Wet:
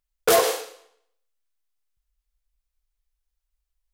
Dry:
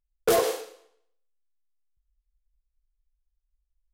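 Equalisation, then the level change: low shelf 220 Hz -10 dB; bell 360 Hz -4.5 dB 1.1 oct; +7.0 dB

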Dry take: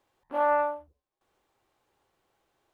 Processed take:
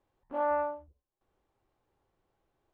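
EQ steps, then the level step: tilt -2.5 dB/oct; -6.0 dB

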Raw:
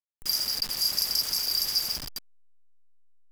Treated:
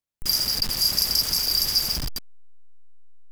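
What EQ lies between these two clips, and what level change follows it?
low shelf 250 Hz +10.5 dB; +4.5 dB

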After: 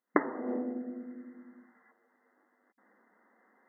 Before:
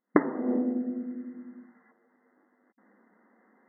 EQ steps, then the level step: HPF 580 Hz 6 dB/oct; 0.0 dB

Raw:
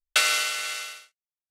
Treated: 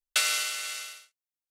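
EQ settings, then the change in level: high shelf 3800 Hz +7.5 dB; -7.5 dB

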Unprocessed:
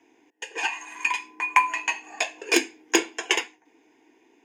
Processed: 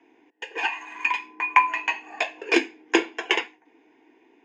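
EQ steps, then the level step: BPF 120–3200 Hz; +2.0 dB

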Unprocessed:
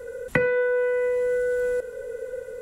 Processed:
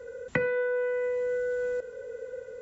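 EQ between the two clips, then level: HPF 57 Hz; brick-wall FIR low-pass 7600 Hz; -5.5 dB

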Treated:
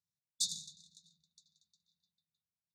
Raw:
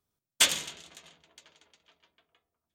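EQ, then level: BPF 150–6900 Hz; brick-wall FIR band-stop 210–3500 Hz; -6.0 dB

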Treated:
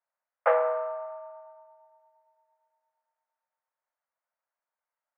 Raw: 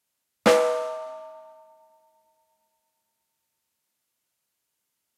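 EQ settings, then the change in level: steep high-pass 540 Hz 48 dB/oct; LPF 1800 Hz 24 dB/oct; air absorption 320 m; 0.0 dB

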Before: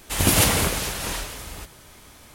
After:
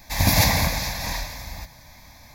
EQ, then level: fixed phaser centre 2000 Hz, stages 8; +3.5 dB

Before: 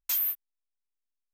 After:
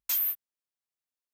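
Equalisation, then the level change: HPF 53 Hz; 0.0 dB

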